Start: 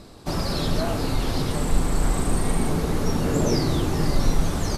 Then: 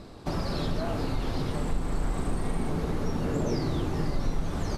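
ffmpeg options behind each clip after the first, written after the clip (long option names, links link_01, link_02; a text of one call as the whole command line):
ffmpeg -i in.wav -af "highshelf=frequency=5400:gain=-11.5,acompressor=threshold=-29dB:ratio=2" out.wav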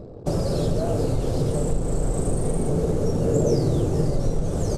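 ffmpeg -i in.wav -af "anlmdn=0.0158,equalizer=frequency=125:width_type=o:width=1:gain=7,equalizer=frequency=250:width_type=o:width=1:gain=-3,equalizer=frequency=500:width_type=o:width=1:gain=11,equalizer=frequency=1000:width_type=o:width=1:gain=-7,equalizer=frequency=2000:width_type=o:width=1:gain=-8,equalizer=frequency=4000:width_type=o:width=1:gain=-6,equalizer=frequency=8000:width_type=o:width=1:gain=11,volume=3.5dB" out.wav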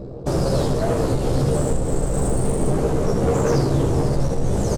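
ffmpeg -i in.wav -filter_complex "[0:a]volume=21.5dB,asoftclip=hard,volume=-21.5dB,asplit=2[link_01][link_02];[link_02]aecho=0:1:15|79:0.708|0.501[link_03];[link_01][link_03]amix=inputs=2:normalize=0,volume=3.5dB" out.wav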